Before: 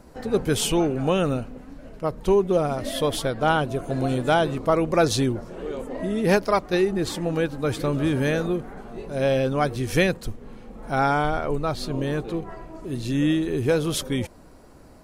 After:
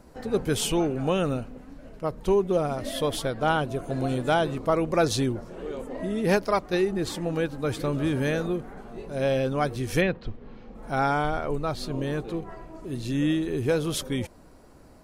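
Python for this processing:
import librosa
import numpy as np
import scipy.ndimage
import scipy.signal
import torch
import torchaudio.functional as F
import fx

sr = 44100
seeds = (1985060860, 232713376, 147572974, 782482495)

y = fx.lowpass(x, sr, hz=fx.line((10.0, 3100.0), (10.74, 6000.0)), slope=24, at=(10.0, 10.74), fade=0.02)
y = F.gain(torch.from_numpy(y), -3.0).numpy()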